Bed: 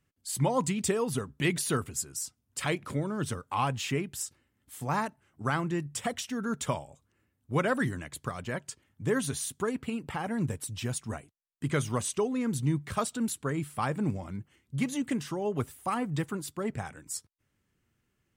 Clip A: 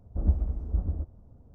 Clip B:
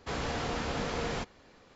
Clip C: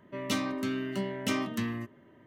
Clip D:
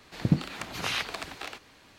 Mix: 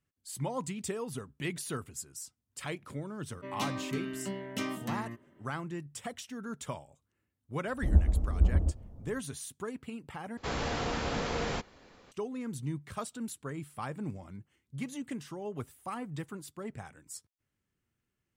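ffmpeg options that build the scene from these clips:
-filter_complex "[0:a]volume=0.398[s0];[1:a]dynaudnorm=f=120:g=3:m=3.76[s1];[2:a]acontrast=54[s2];[s0]asplit=2[s3][s4];[s3]atrim=end=10.374[s5];[s2]atrim=end=1.75,asetpts=PTS-STARTPTS,volume=0.531[s6];[s4]atrim=start=12.116[s7];[3:a]atrim=end=2.26,asetpts=PTS-STARTPTS,volume=0.562,afade=t=in:d=0.004:c=hsin,afade=t=out:st=2.256:d=0.004:c=hsin,adelay=3300[s8];[s1]atrim=end=1.54,asetpts=PTS-STARTPTS,volume=0.422,afade=t=in:d=0.004:c=hsin,afade=t=out:st=1.536:d=0.004:c=hsin,adelay=7670[s9];[s5][s6]acrossfade=d=0.004:c1=hsin:c2=hsin[s10];[s10][s7]acrossfade=d=0.004:c1=hsin:c2=hsin[s11];[s11][s8][s9]amix=inputs=3:normalize=0"

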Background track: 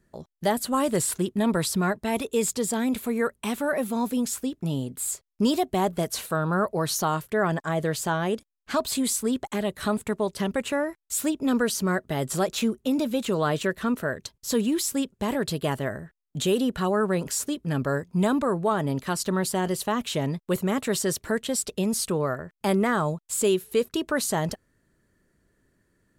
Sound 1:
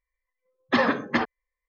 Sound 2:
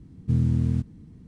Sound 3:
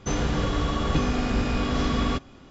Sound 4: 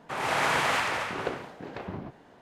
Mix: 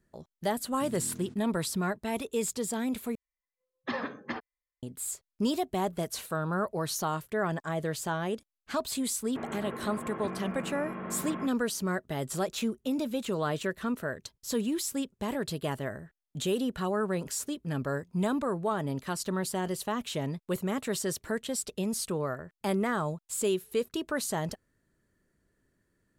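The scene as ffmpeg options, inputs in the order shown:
-filter_complex "[0:a]volume=0.501[s0];[2:a]highpass=320[s1];[3:a]highpass=f=240:t=q:w=0.5412,highpass=f=240:t=q:w=1.307,lowpass=f=2300:t=q:w=0.5176,lowpass=f=2300:t=q:w=0.7071,lowpass=f=2300:t=q:w=1.932,afreqshift=-62[s2];[s0]asplit=2[s3][s4];[s3]atrim=end=3.154[s5];[1:a]atrim=end=1.68,asetpts=PTS-STARTPTS,volume=0.237[s6];[s4]atrim=start=4.826[s7];[s1]atrim=end=1.27,asetpts=PTS-STARTPTS,volume=0.335,afade=t=in:d=0.004:c=hsin,afade=t=out:st=1.266:d=0.004:c=hsin,adelay=520[s8];[s2]atrim=end=2.5,asetpts=PTS-STARTPTS,volume=0.335,afade=t=in:d=0.004:c=hsin,afade=t=out:st=2.496:d=0.004:c=hsin,adelay=9290[s9];[s5][s6]acrossfade=d=0.004:c1=hsin:c2=hsin[s10];[s10][s7]acrossfade=d=0.004:c1=hsin:c2=hsin[s11];[s11][s8][s9]amix=inputs=3:normalize=0"

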